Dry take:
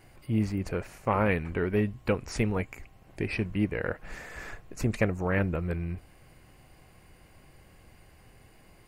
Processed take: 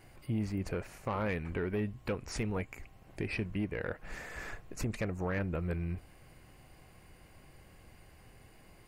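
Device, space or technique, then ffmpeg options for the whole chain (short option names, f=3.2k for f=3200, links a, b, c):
soft clipper into limiter: -af "asoftclip=type=tanh:threshold=-18dB,alimiter=level_in=0.5dB:limit=-24dB:level=0:latency=1:release=288,volume=-0.5dB,volume=-1.5dB"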